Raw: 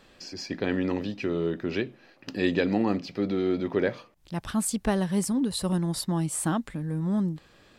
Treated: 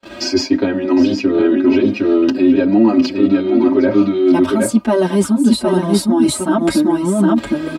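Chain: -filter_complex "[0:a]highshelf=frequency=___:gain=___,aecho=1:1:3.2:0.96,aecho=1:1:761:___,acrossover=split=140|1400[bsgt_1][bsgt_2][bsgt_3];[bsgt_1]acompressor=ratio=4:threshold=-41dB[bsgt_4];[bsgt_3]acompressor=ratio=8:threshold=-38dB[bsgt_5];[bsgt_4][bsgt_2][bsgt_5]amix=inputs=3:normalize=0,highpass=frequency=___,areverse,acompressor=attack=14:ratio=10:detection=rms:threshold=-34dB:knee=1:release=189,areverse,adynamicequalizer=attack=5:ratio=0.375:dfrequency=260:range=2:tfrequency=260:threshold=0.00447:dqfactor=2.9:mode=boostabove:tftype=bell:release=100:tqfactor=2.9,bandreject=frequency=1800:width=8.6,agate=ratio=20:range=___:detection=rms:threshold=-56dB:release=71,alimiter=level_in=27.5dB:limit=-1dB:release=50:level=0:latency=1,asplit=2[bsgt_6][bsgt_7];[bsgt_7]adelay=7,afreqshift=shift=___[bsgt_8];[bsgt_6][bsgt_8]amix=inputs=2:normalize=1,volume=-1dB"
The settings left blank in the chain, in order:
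3500, -9, 0.473, 100, -34dB, 1.5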